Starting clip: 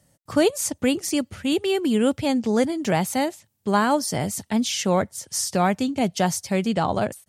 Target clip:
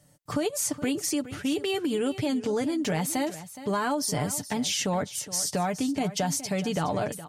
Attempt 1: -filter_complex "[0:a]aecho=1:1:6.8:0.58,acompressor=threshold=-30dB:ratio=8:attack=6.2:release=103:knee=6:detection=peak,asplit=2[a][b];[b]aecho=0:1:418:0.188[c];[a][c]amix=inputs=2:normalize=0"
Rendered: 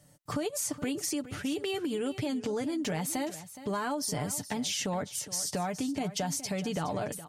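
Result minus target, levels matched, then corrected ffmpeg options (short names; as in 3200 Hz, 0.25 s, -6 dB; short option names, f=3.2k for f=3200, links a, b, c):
compressor: peak gain reduction +5 dB
-filter_complex "[0:a]aecho=1:1:6.8:0.58,acompressor=threshold=-24dB:ratio=8:attack=6.2:release=103:knee=6:detection=peak,asplit=2[a][b];[b]aecho=0:1:418:0.188[c];[a][c]amix=inputs=2:normalize=0"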